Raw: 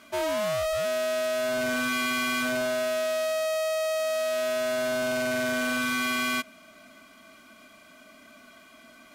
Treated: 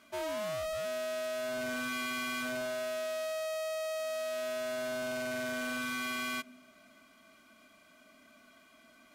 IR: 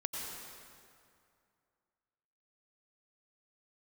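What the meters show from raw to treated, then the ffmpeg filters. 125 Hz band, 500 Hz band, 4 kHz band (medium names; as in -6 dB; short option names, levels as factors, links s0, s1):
-8.5 dB, -8.5 dB, -8.5 dB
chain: -filter_complex "[0:a]asplit=2[s0][s1];[s1]asuperpass=centerf=220:order=4:qfactor=1[s2];[1:a]atrim=start_sample=2205,afade=t=out:st=0.42:d=0.01,atrim=end_sample=18963,adelay=40[s3];[s2][s3]afir=irnorm=-1:irlink=0,volume=0.178[s4];[s0][s4]amix=inputs=2:normalize=0,volume=0.376"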